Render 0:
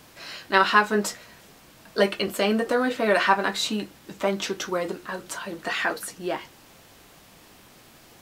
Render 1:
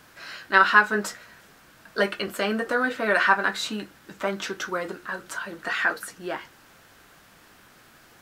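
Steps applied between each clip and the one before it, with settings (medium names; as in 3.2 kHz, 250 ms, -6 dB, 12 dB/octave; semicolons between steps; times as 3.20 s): peaking EQ 1.5 kHz +9.5 dB 0.7 oct; trim -4 dB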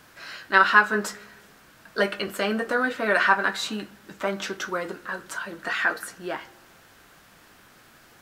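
reverberation RT60 1.2 s, pre-delay 4 ms, DRR 19 dB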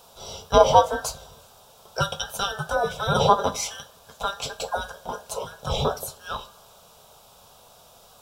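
every band turned upside down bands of 2 kHz; static phaser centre 760 Hz, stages 4; trim +5 dB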